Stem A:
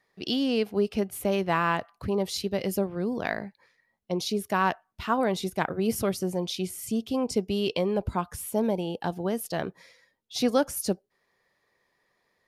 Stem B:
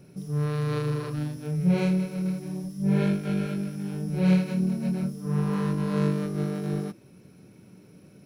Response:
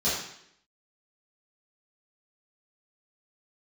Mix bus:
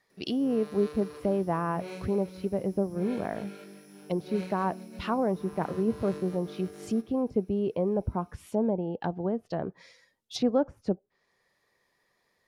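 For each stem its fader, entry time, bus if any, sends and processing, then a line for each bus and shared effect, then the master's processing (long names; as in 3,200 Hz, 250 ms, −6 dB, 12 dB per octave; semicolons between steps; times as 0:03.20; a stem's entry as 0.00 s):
−1.0 dB, 0.00 s, no send, no echo send, treble cut that deepens with the level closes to 870 Hz, closed at −26 dBFS
−11.0 dB, 0.10 s, no send, echo send −13 dB, high-pass filter 250 Hz 24 dB per octave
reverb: not used
echo: repeating echo 198 ms, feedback 48%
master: bass and treble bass +1 dB, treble +4 dB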